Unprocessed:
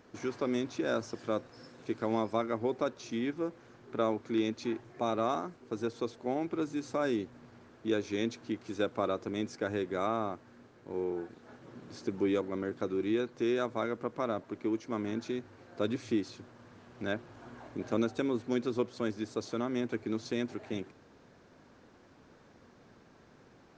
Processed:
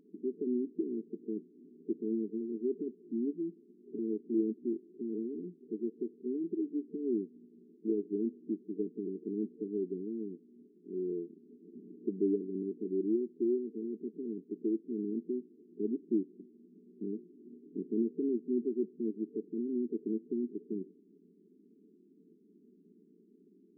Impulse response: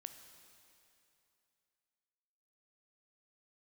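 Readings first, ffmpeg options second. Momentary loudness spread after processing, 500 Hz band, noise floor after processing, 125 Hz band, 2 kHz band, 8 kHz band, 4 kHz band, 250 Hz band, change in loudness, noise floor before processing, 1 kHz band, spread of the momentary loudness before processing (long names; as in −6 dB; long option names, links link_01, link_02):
11 LU, −3.0 dB, −63 dBFS, −7.0 dB, below −40 dB, can't be measured, below −35 dB, 0.0 dB, −2.0 dB, −60 dBFS, below −40 dB, 10 LU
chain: -af "afftfilt=real='re*between(b*sr/4096,170,450)':imag='im*between(b*sr/4096,170,450)':win_size=4096:overlap=0.75"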